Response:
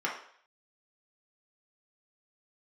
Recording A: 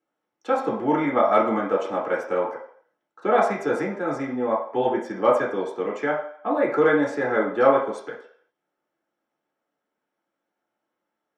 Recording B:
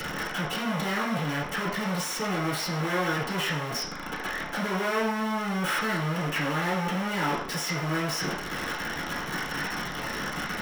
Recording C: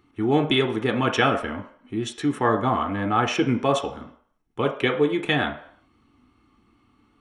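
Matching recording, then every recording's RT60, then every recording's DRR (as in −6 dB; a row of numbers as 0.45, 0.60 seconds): A; 0.60, 0.60, 0.60 seconds; −3.5, −9.5, 4.0 decibels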